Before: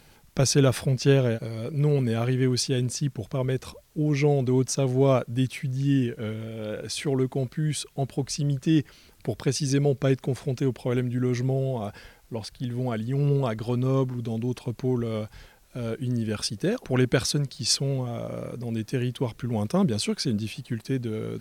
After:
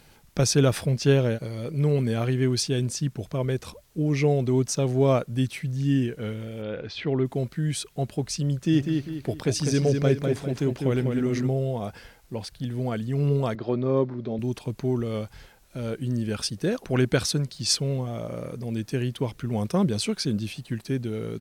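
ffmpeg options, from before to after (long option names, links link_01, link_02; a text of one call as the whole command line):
ffmpeg -i in.wav -filter_complex "[0:a]asplit=3[link_01][link_02][link_03];[link_01]afade=type=out:start_time=6.61:duration=0.02[link_04];[link_02]lowpass=frequency=3900:width=0.5412,lowpass=frequency=3900:width=1.3066,afade=type=in:start_time=6.61:duration=0.02,afade=type=out:start_time=7.24:duration=0.02[link_05];[link_03]afade=type=in:start_time=7.24:duration=0.02[link_06];[link_04][link_05][link_06]amix=inputs=3:normalize=0,asplit=3[link_07][link_08][link_09];[link_07]afade=type=out:start_time=8.72:duration=0.02[link_10];[link_08]asplit=2[link_11][link_12];[link_12]adelay=199,lowpass=frequency=4200:poles=1,volume=-4.5dB,asplit=2[link_13][link_14];[link_14]adelay=199,lowpass=frequency=4200:poles=1,volume=0.4,asplit=2[link_15][link_16];[link_16]adelay=199,lowpass=frequency=4200:poles=1,volume=0.4,asplit=2[link_17][link_18];[link_18]adelay=199,lowpass=frequency=4200:poles=1,volume=0.4,asplit=2[link_19][link_20];[link_20]adelay=199,lowpass=frequency=4200:poles=1,volume=0.4[link_21];[link_11][link_13][link_15][link_17][link_19][link_21]amix=inputs=6:normalize=0,afade=type=in:start_time=8.72:duration=0.02,afade=type=out:start_time=11.46:duration=0.02[link_22];[link_09]afade=type=in:start_time=11.46:duration=0.02[link_23];[link_10][link_22][link_23]amix=inputs=3:normalize=0,asettb=1/sr,asplit=3[link_24][link_25][link_26];[link_24]atrim=end=13.554[link_27];[link_25]atrim=start=13.55:end=14.39,asetpts=PTS-STARTPTS,afade=type=in:duration=0.004:curve=qsin,afade=type=out:start_time=0.836:duration=0.004:curve=qsin,highpass=150,equalizer=frequency=360:width_type=q:width=4:gain=4,equalizer=frequency=580:width_type=q:width=4:gain=7,equalizer=frequency=2900:width_type=q:width=4:gain=-9,lowpass=frequency=4100:width=0.5412,lowpass=frequency=4100:width=1.3066[link_28];[link_26]atrim=start=14.386[link_29];[link_27][link_28]acrossfade=duration=0.004:curve1=hsin:curve2=qsin[link_30];[link_30][link_29]acrossfade=duration=0.004:curve1=qsin:curve2=hsin" out.wav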